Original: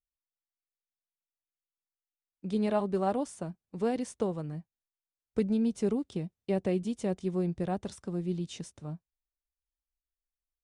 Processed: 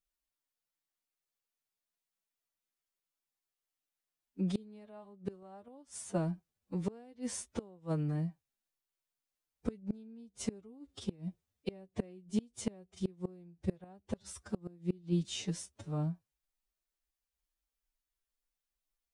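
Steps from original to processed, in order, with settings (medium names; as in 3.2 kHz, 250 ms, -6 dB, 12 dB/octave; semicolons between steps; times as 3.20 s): time stretch by phase-locked vocoder 1.8×; inverted gate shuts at -25 dBFS, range -28 dB; trim +4 dB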